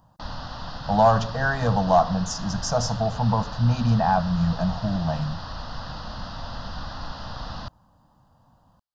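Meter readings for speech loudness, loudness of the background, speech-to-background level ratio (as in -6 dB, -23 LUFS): -23.5 LUFS, -36.0 LUFS, 12.5 dB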